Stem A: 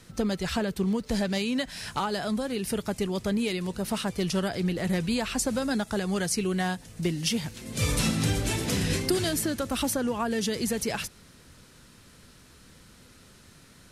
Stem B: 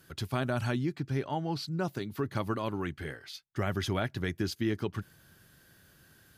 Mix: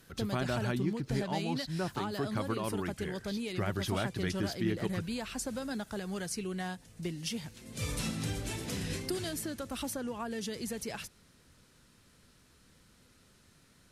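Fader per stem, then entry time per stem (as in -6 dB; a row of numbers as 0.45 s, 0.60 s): -9.5 dB, -2.5 dB; 0.00 s, 0.00 s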